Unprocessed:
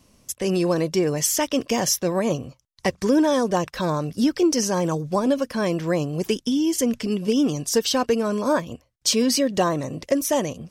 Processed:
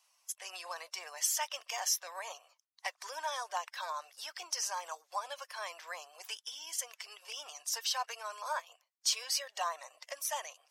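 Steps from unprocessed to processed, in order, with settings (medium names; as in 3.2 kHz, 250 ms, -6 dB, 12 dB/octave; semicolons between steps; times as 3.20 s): coarse spectral quantiser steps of 15 dB; steep high-pass 750 Hz 36 dB/octave; trim -8.5 dB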